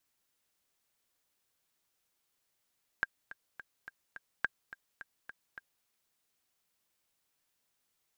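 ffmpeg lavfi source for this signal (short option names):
-f lavfi -i "aevalsrc='pow(10,(-16-16*gte(mod(t,5*60/212),60/212))/20)*sin(2*PI*1600*mod(t,60/212))*exp(-6.91*mod(t,60/212)/0.03)':d=2.83:s=44100"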